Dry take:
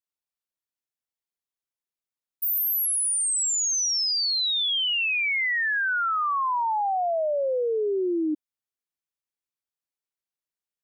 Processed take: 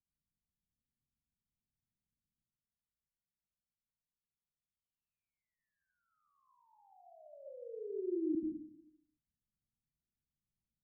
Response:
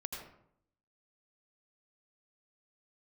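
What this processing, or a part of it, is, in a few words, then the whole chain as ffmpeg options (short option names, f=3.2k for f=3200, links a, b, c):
club heard from the street: -filter_complex "[0:a]alimiter=level_in=8dB:limit=-24dB:level=0:latency=1:release=17,volume=-8dB,lowpass=f=210:w=0.5412,lowpass=f=210:w=1.3066[a];[1:a]atrim=start_sample=2205[b];[a][b]afir=irnorm=-1:irlink=0,volume=17dB"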